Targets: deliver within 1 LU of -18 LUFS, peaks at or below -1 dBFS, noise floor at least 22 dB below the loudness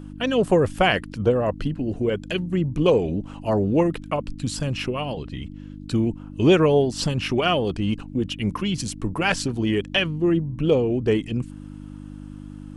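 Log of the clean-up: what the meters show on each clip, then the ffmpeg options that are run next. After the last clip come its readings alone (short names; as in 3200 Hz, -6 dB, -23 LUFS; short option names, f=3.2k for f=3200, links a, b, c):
hum 50 Hz; harmonics up to 300 Hz; hum level -35 dBFS; loudness -23.0 LUFS; peak -5.0 dBFS; loudness target -18.0 LUFS
-> -af "bandreject=f=50:t=h:w=4,bandreject=f=100:t=h:w=4,bandreject=f=150:t=h:w=4,bandreject=f=200:t=h:w=4,bandreject=f=250:t=h:w=4,bandreject=f=300:t=h:w=4"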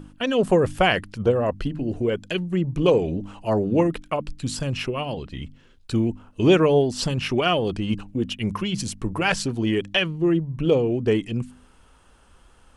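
hum none; loudness -23.0 LUFS; peak -5.0 dBFS; loudness target -18.0 LUFS
-> -af "volume=5dB,alimiter=limit=-1dB:level=0:latency=1"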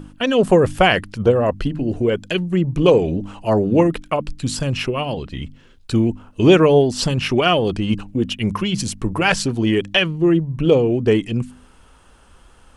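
loudness -18.0 LUFS; peak -1.0 dBFS; noise floor -50 dBFS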